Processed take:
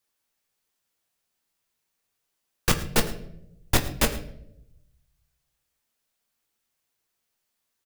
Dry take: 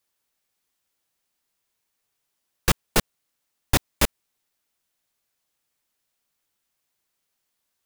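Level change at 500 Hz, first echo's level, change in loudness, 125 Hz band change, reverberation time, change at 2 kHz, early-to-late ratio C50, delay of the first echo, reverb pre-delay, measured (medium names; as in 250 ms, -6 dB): 0.0 dB, -18.5 dB, -1.5 dB, -0.5 dB, 0.80 s, -1.0 dB, 11.5 dB, 108 ms, 8 ms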